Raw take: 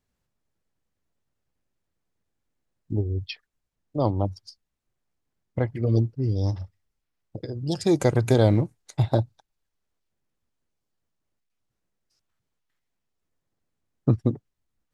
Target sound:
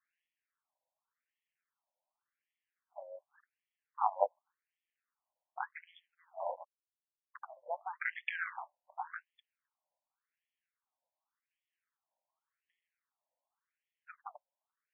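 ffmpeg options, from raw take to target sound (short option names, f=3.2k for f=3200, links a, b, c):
-filter_complex "[0:a]asettb=1/sr,asplit=3[a][b][c];[a]atrim=end=6.404[d];[b]atrim=start=6.4:end=7.45,asetpts=PTS-STARTPTS,afade=t=in:d=0.004:c=qsin,afade=t=out:st=1.046:d=0.004:c=qsin,acrusher=bits=4:mix=0:aa=0.5[e];[c]atrim=start=7.446[f];[d][e]acrossfade=d=0.004:c1=hsin:c2=qsin[g];[g][f]acrossfade=d=0.004:c1=qsin:c2=hsin,tremolo=f=170:d=0.788,afftfilt=real='re*between(b*sr/1024,720*pow(2500/720,0.5+0.5*sin(2*PI*0.88*pts/sr))/1.41,720*pow(2500/720,0.5+0.5*sin(2*PI*0.88*pts/sr))*1.41)':imag='im*between(b*sr/1024,720*pow(2500/720,0.5+0.5*sin(2*PI*0.88*pts/sr))/1.41,720*pow(2500/720,0.5+0.5*sin(2*PI*0.88*pts/sr))*1.41)':win_size=1024:overlap=0.75,volume=5.5dB"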